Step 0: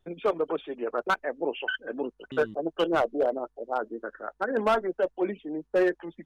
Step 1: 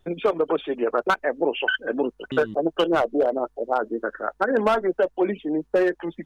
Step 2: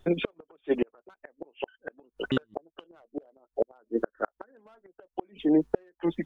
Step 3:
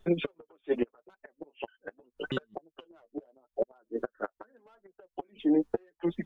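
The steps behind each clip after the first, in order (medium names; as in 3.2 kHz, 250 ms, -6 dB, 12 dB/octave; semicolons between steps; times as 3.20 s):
compression, threshold -26 dBFS, peak gain reduction 6.5 dB; trim +9 dB
inverted gate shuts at -16 dBFS, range -40 dB; trim +3.5 dB
flange 0.81 Hz, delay 4.4 ms, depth 6.2 ms, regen +18%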